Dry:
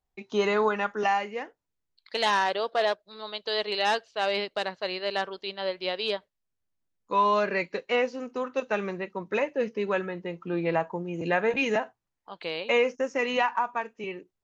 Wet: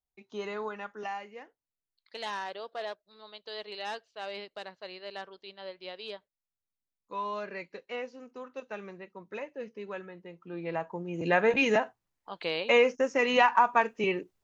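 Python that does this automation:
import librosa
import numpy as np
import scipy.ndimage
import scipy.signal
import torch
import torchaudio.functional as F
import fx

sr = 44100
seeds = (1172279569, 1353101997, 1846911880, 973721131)

y = fx.gain(x, sr, db=fx.line((10.41, -12.0), (11.38, 1.0), (13.24, 1.0), (13.85, 7.0)))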